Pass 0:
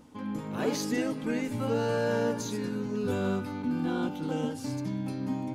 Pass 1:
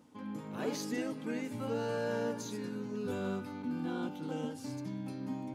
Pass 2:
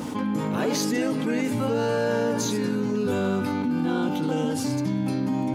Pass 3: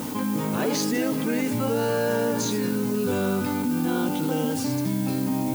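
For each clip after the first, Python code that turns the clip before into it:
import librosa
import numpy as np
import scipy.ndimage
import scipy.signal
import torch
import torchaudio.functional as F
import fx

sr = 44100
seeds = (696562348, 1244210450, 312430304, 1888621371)

y1 = scipy.signal.sosfilt(scipy.signal.butter(2, 110.0, 'highpass', fs=sr, output='sos'), x)
y1 = y1 * 10.0 ** (-6.5 / 20.0)
y2 = fx.env_flatten(y1, sr, amount_pct=70)
y2 = y2 * 10.0 ** (8.5 / 20.0)
y3 = fx.dmg_noise_colour(y2, sr, seeds[0], colour='blue', level_db=-40.0)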